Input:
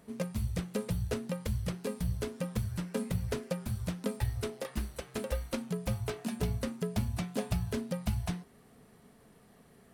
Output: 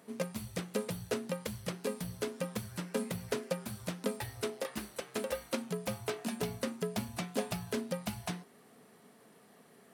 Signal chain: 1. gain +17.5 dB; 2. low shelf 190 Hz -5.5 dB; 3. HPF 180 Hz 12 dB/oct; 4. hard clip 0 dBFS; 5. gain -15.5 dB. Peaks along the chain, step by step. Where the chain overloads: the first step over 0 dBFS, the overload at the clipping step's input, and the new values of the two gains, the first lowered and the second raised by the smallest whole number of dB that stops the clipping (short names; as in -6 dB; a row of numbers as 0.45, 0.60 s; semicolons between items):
-2.0, -3.0, -3.5, -3.5, -19.0 dBFS; no overload